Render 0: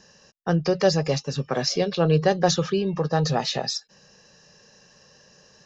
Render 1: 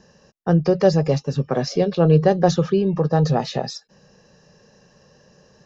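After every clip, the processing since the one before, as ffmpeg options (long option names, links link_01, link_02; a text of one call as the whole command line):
ffmpeg -i in.wav -af "tiltshelf=frequency=1200:gain=6" out.wav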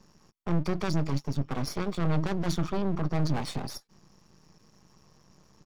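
ffmpeg -i in.wav -af "asoftclip=type=tanh:threshold=-18dB,aecho=1:1:0.9:0.73,aeval=exprs='max(val(0),0)':channel_layout=same,volume=-3.5dB" out.wav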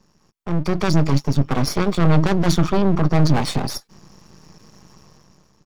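ffmpeg -i in.wav -af "dynaudnorm=framelen=190:gausssize=7:maxgain=12dB" out.wav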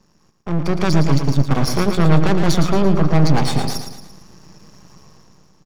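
ffmpeg -i in.wav -af "aecho=1:1:113|226|339|452|565:0.422|0.198|0.0932|0.0438|0.0206,volume=1dB" out.wav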